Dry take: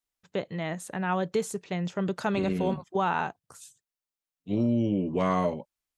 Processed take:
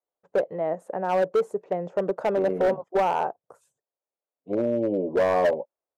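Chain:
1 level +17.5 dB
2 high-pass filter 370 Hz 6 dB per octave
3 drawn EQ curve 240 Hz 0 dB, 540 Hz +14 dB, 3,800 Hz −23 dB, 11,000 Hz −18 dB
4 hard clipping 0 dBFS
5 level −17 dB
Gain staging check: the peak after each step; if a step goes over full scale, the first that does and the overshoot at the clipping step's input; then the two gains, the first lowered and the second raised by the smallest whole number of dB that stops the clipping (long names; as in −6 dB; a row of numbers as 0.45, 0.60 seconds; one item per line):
+4.0, +3.5, +9.0, 0.0, −17.0 dBFS
step 1, 9.0 dB
step 1 +8.5 dB, step 5 −8 dB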